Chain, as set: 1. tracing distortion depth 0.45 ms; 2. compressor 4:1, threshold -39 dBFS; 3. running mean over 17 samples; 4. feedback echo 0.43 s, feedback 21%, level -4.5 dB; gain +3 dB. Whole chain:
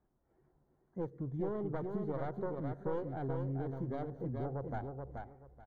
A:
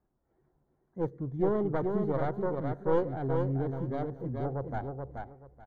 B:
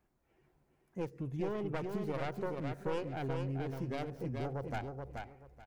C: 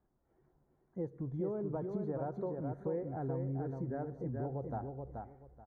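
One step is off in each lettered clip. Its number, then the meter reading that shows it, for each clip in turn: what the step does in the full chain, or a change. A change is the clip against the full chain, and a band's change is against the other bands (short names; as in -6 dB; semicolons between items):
2, mean gain reduction 5.0 dB; 3, 2 kHz band +7.5 dB; 1, 2 kHz band -5.5 dB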